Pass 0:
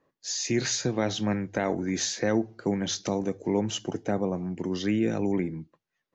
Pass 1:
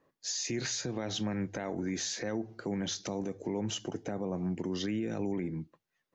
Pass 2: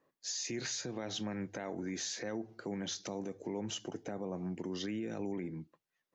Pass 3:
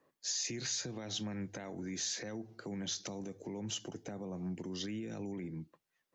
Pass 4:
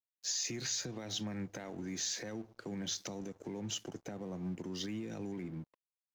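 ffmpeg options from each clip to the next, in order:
-af "alimiter=level_in=1.5dB:limit=-24dB:level=0:latency=1:release=131,volume=-1.5dB"
-af "lowshelf=f=110:g=-9,volume=-3.5dB"
-filter_complex "[0:a]acrossover=split=190|3000[a][b][c];[b]acompressor=threshold=-51dB:ratio=2[d];[a][d][c]amix=inputs=3:normalize=0,volume=2.5dB"
-af "aeval=exprs='sgn(val(0))*max(abs(val(0))-0.00119,0)':c=same,volume=1dB"

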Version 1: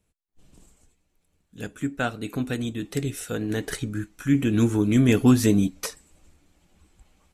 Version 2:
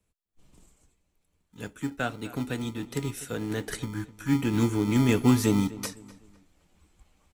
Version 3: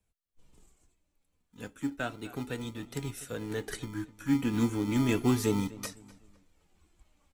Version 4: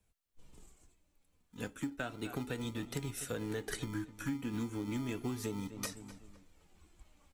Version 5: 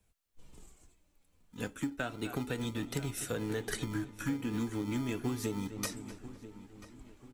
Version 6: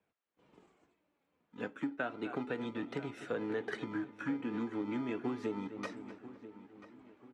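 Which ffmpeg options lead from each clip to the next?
-filter_complex "[0:a]acrossover=split=200|920|1900[a][b][c][d];[a]acrusher=samples=40:mix=1:aa=0.000001[e];[e][b][c][d]amix=inputs=4:normalize=0,asplit=2[f][g];[g]adelay=252,lowpass=f=3.4k:p=1,volume=-17.5dB,asplit=2[h][i];[i]adelay=252,lowpass=f=3.4k:p=1,volume=0.36,asplit=2[j][k];[k]adelay=252,lowpass=f=3.4k:p=1,volume=0.36[l];[f][h][j][l]amix=inputs=4:normalize=0,volume=-3.5dB"
-af "flanger=delay=1.2:depth=3:regen=59:speed=0.33:shape=triangular"
-af "acompressor=threshold=-37dB:ratio=16,volume=3dB"
-filter_complex "[0:a]asplit=2[a][b];[b]adelay=989,lowpass=f=2.5k:p=1,volume=-15dB,asplit=2[c][d];[d]adelay=989,lowpass=f=2.5k:p=1,volume=0.43,asplit=2[e][f];[f]adelay=989,lowpass=f=2.5k:p=1,volume=0.43,asplit=2[g][h];[h]adelay=989,lowpass=f=2.5k:p=1,volume=0.43[i];[a][c][e][g][i]amix=inputs=5:normalize=0,volume=3dB"
-af "highpass=250,lowpass=2.1k,volume=1dB"

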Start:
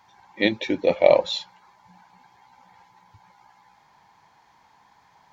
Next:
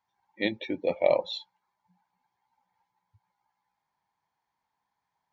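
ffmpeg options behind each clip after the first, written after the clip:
-af "afftdn=nr=17:nf=-36,volume=-7.5dB"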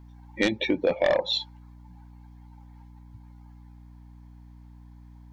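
-af "aeval=exprs='val(0)+0.001*(sin(2*PI*60*n/s)+sin(2*PI*2*60*n/s)/2+sin(2*PI*3*60*n/s)/3+sin(2*PI*4*60*n/s)/4+sin(2*PI*5*60*n/s)/5)':c=same,aeval=exprs='0.335*sin(PI/2*2.24*val(0)/0.335)':c=same,acompressor=threshold=-26dB:ratio=2.5,volume=2.5dB"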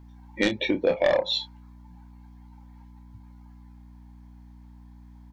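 -filter_complex "[0:a]asplit=2[a][b];[b]adelay=29,volume=-8.5dB[c];[a][c]amix=inputs=2:normalize=0"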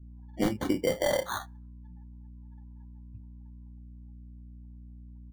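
-af "acrusher=samples=17:mix=1:aa=0.000001,afftdn=nr=26:nf=-52,lowshelf=f=300:g=9.5,volume=-7.5dB"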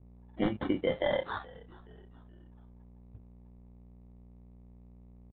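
-filter_complex "[0:a]aresample=8000,aeval=exprs='sgn(val(0))*max(abs(val(0))-0.00251,0)':c=same,aresample=44100,asplit=4[a][b][c][d];[b]adelay=424,afreqshift=-78,volume=-22.5dB[e];[c]adelay=848,afreqshift=-156,volume=-29.4dB[f];[d]adelay=1272,afreqshift=-234,volume=-36.4dB[g];[a][e][f][g]amix=inputs=4:normalize=0,volume=-2dB"

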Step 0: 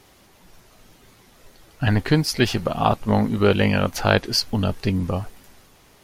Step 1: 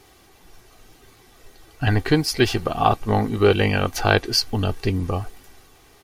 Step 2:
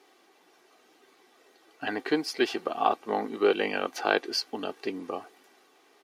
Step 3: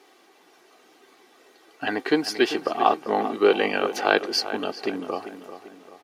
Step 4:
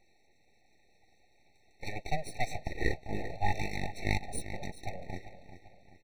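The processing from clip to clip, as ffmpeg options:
-af "aecho=1:1:2.6:0.45"
-af "highpass=f=270:w=0.5412,highpass=f=270:w=1.3066,highshelf=f=7k:g=-12,volume=-6dB"
-filter_complex "[0:a]asplit=2[a][b];[b]adelay=393,lowpass=f=2.9k:p=1,volume=-11.5dB,asplit=2[c][d];[d]adelay=393,lowpass=f=2.9k:p=1,volume=0.47,asplit=2[e][f];[f]adelay=393,lowpass=f=2.9k:p=1,volume=0.47,asplit=2[g][h];[h]adelay=393,lowpass=f=2.9k:p=1,volume=0.47,asplit=2[i][j];[j]adelay=393,lowpass=f=2.9k:p=1,volume=0.47[k];[a][c][e][g][i][k]amix=inputs=6:normalize=0,volume=5dB"
-af "aresample=11025,aresample=44100,aeval=exprs='abs(val(0))':c=same,afftfilt=real='re*eq(mod(floor(b*sr/1024/900),2),0)':imag='im*eq(mod(floor(b*sr/1024/900),2),0)':win_size=1024:overlap=0.75,volume=-8dB"

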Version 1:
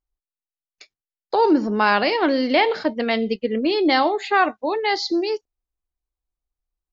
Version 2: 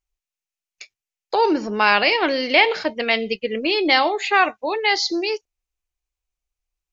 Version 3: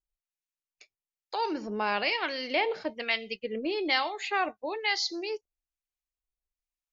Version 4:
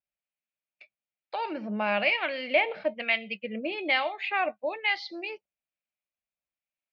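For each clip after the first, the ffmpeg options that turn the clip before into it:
-af "equalizer=f=250:t=o:w=0.67:g=-7,equalizer=f=2.5k:t=o:w=0.67:g=9,equalizer=f=6.3k:t=o:w=0.67:g=8"
-filter_complex "[0:a]acrossover=split=870[a][b];[a]aeval=exprs='val(0)*(1-0.7/2+0.7/2*cos(2*PI*1.1*n/s))':c=same[c];[b]aeval=exprs='val(0)*(1-0.7/2-0.7/2*cos(2*PI*1.1*n/s))':c=same[d];[c][d]amix=inputs=2:normalize=0,volume=-7.5dB"
-af "highpass=120,equalizer=f=200:t=q:w=4:g=7,equalizer=f=290:t=q:w=4:g=-3,equalizer=f=420:t=q:w=4:g=-9,equalizer=f=600:t=q:w=4:g=9,equalizer=f=1k:t=q:w=4:g=-4,equalizer=f=2.4k:t=q:w=4:g=7,lowpass=f=3.4k:w=0.5412,lowpass=f=3.4k:w=1.3066"

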